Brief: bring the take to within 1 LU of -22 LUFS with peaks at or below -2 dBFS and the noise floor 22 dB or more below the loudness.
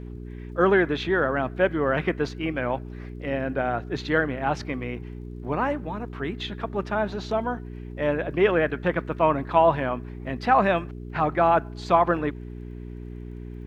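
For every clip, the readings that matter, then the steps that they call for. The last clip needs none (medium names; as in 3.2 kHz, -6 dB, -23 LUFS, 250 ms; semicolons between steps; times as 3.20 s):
tick rate 22 per s; hum 60 Hz; highest harmonic 420 Hz; hum level -34 dBFS; loudness -25.0 LUFS; peak level -6.5 dBFS; loudness target -22.0 LUFS
-> de-click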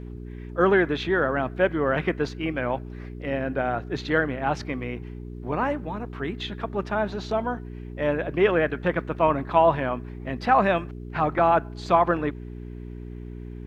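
tick rate 0.37 per s; hum 60 Hz; highest harmonic 420 Hz; hum level -34 dBFS
-> de-hum 60 Hz, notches 7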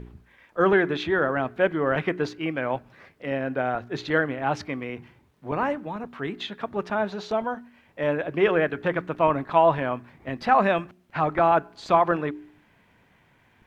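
hum not found; loudness -25.0 LUFS; peak level -7.5 dBFS; loudness target -22.0 LUFS
-> trim +3 dB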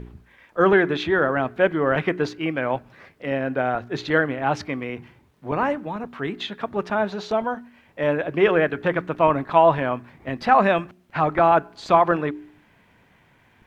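loudness -22.0 LUFS; peak level -4.5 dBFS; noise floor -58 dBFS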